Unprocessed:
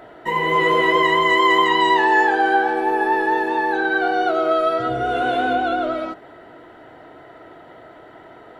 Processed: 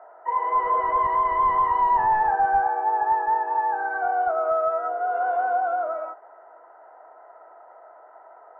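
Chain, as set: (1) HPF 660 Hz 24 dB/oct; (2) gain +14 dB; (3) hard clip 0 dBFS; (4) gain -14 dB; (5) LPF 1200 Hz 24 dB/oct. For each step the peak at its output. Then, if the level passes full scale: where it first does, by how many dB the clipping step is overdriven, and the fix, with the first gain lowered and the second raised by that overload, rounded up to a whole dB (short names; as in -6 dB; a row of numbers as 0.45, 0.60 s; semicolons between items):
-6.5, +7.5, 0.0, -14.0, -13.0 dBFS; step 2, 7.5 dB; step 2 +6 dB, step 4 -6 dB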